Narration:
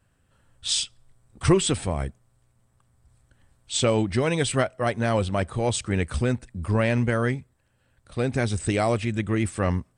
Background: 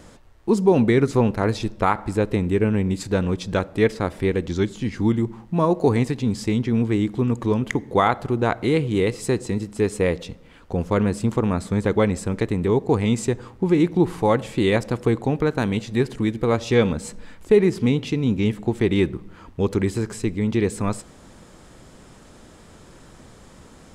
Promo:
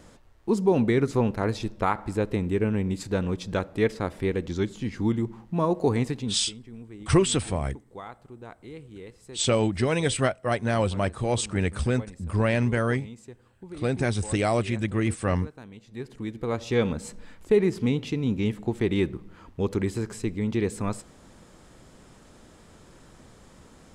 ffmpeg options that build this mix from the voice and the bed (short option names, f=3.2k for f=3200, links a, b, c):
-filter_complex "[0:a]adelay=5650,volume=-1dB[a];[1:a]volume=12.5dB,afade=t=out:st=6.15:d=0.29:silence=0.133352,afade=t=in:st=15.8:d=1.12:silence=0.133352[b];[a][b]amix=inputs=2:normalize=0"